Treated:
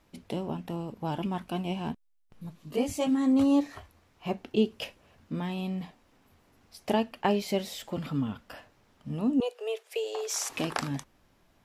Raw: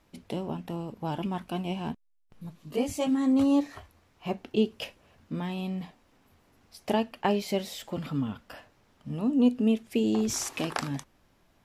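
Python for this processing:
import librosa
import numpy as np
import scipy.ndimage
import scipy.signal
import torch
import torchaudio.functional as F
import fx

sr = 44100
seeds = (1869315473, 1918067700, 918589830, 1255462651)

y = fx.steep_highpass(x, sr, hz=410.0, slope=72, at=(9.4, 10.5))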